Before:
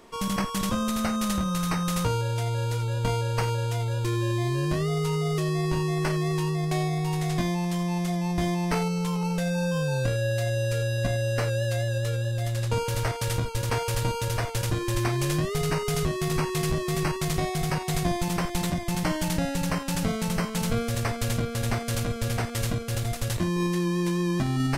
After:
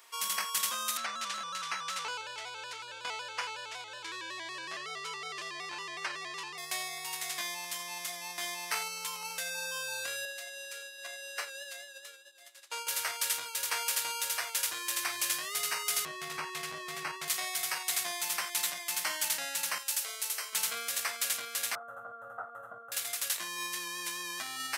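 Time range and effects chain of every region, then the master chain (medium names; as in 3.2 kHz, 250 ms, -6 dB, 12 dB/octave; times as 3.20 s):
0.97–6.58 s: distance through air 110 m + vibrato with a chosen wave square 5.4 Hz, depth 100 cents
10.25–12.87 s: elliptic high-pass 310 Hz + treble shelf 12 kHz -8.5 dB + upward expansion 2.5:1, over -40 dBFS
16.05–17.28 s: high-pass 58 Hz + RIAA curve playback
19.78–20.53 s: ladder high-pass 330 Hz, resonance 40% + treble shelf 2.8 kHz +8.5 dB
21.75–22.92 s: elliptic low-pass 1.4 kHz + comb 1.5 ms, depth 53%
whole clip: high-pass 1.4 kHz 12 dB/octave; treble shelf 9.8 kHz +10.5 dB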